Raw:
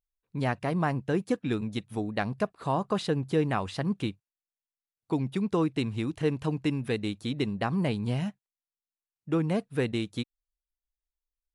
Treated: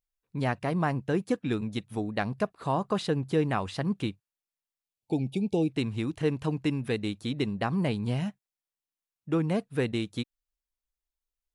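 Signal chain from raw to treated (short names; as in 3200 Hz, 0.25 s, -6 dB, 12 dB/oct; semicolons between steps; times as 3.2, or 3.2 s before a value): spectral gain 4.83–5.69, 890–2200 Hz -27 dB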